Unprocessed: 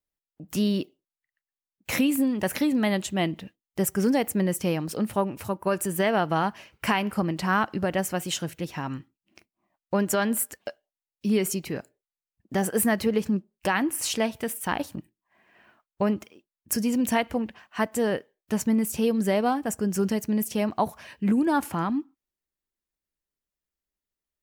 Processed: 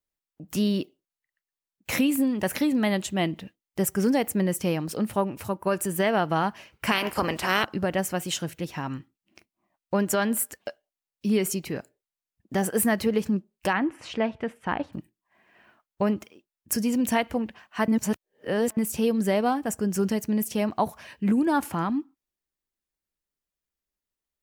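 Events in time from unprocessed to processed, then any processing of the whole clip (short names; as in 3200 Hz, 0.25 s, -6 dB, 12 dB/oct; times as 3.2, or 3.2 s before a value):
6.91–7.64 spectral limiter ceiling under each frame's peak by 21 dB
13.73–14.93 LPF 2300 Hz
17.88–18.77 reverse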